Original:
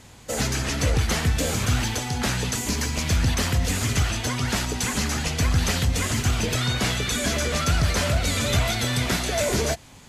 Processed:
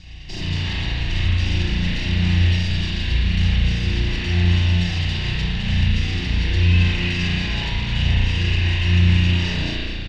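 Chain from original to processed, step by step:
lower of the sound and its delayed copy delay 0.75 ms
drawn EQ curve 210 Hz 0 dB, 1,700 Hz −16 dB, 3,700 Hz +5 dB
in parallel at +1 dB: speech leveller within 4 dB 2 s
on the sum: brickwall limiter −15.5 dBFS, peak gain reduction 11.5 dB
pitch shifter −6 semitones
high-frequency loss of the air 200 metres
on a send: echo with shifted repeats 213 ms, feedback 40%, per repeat −130 Hz, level −6.5 dB
on the sum: spring reverb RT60 1.5 s, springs 34 ms, chirp 25 ms, DRR −6 dB
level −1.5 dB

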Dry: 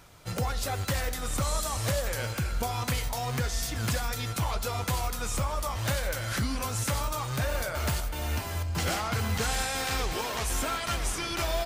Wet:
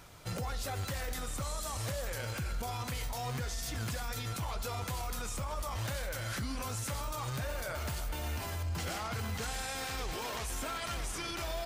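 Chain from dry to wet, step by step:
brickwall limiter −29 dBFS, peak gain reduction 10.5 dB

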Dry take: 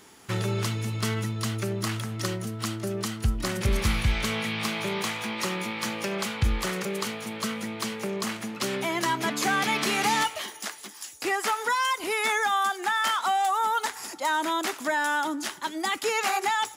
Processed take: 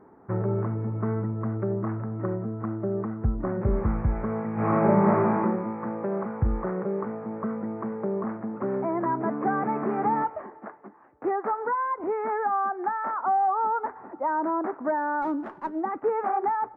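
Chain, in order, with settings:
Gaussian smoothing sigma 8.1 samples
low-shelf EQ 190 Hz −7.5 dB
0:04.53–0:05.39: thrown reverb, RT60 0.88 s, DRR −10.5 dB
0:15.22–0:15.81: windowed peak hold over 3 samples
level +6 dB

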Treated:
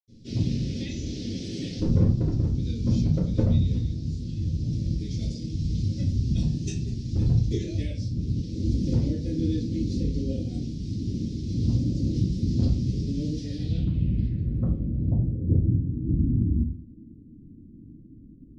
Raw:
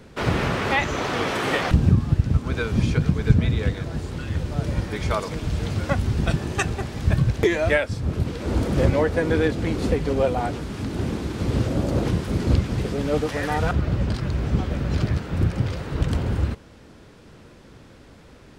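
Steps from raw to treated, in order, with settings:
Chebyshev band-stop filter 230–4,800 Hz, order 2
wave folding −12 dBFS
low-pass filter sweep 5,700 Hz → 290 Hz, 0:13.33–0:15.75
convolution reverb RT60 0.45 s, pre-delay 78 ms, DRR −60 dB
level +3 dB

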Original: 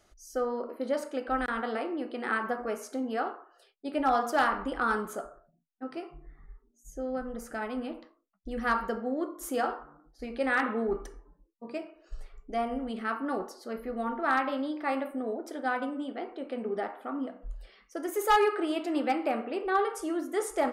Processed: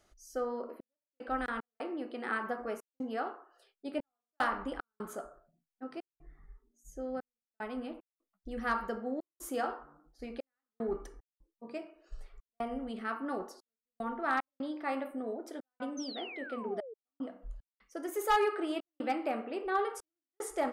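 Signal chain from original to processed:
gate pattern "xxxx..xx.xxxxx.x" 75 BPM −60 dB
sound drawn into the spectrogram fall, 0:15.97–0:16.94, 420–6,400 Hz −41 dBFS
level −4.5 dB

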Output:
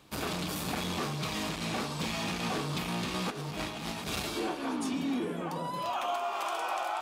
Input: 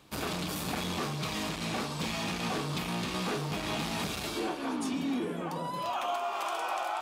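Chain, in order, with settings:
0:03.30–0:04.22: compressor whose output falls as the input rises −36 dBFS, ratio −0.5

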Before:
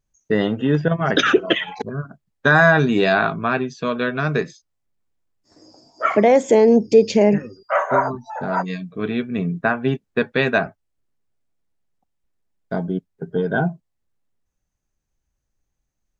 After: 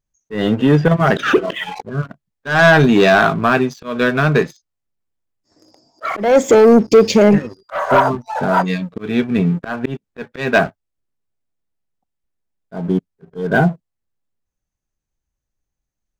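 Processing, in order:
leveller curve on the samples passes 2
volume swells 209 ms

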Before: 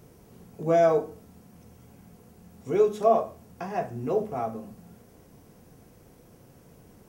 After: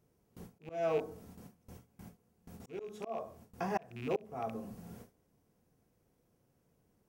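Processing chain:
loose part that buzzes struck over −35 dBFS, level −28 dBFS
noise gate with hold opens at −41 dBFS
volume swells 783 ms
level +1 dB

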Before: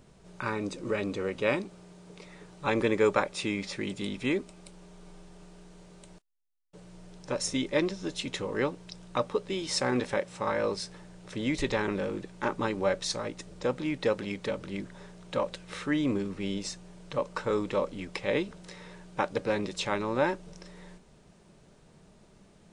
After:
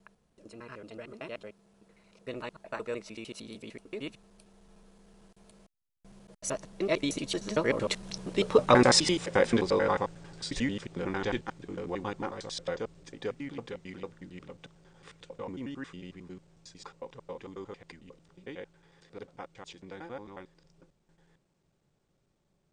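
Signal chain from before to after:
slices reordered back to front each 83 ms, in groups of 5
source passing by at 0:08.70, 31 m/s, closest 22 metres
level +8 dB

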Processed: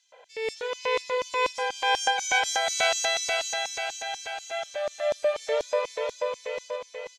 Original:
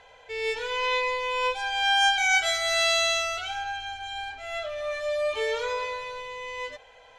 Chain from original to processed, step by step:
0:01.17–0:01.69: bass and treble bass +13 dB, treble +5 dB
auto-filter high-pass square 4.1 Hz 520–5,800 Hz
repeating echo 485 ms, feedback 52%, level −4 dB
level −3.5 dB

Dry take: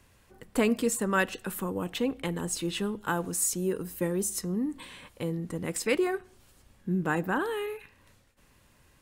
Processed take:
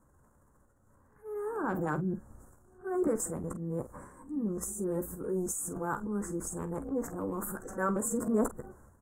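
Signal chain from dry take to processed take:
played backwards from end to start
elliptic band-stop filter 1,400–7,200 Hz, stop band 60 dB
high-shelf EQ 6,800 Hz −9.5 dB
transient designer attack −2 dB, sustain +10 dB
on a send: ambience of single reflections 14 ms −9 dB, 48 ms −13.5 dB
on the sum: level −3.5 dB

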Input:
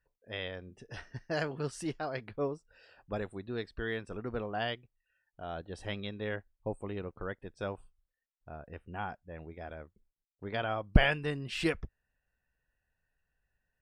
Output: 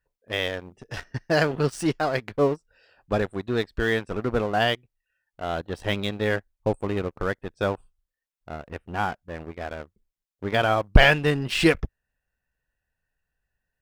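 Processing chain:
leveller curve on the samples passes 2
level +4.5 dB

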